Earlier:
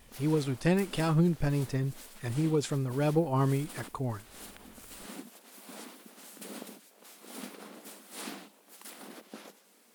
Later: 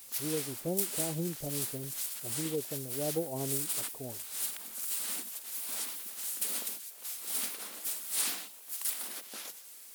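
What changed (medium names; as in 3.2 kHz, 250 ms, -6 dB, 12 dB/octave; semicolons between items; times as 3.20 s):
speech: add steep low-pass 690 Hz; master: add tilt EQ +4.5 dB/octave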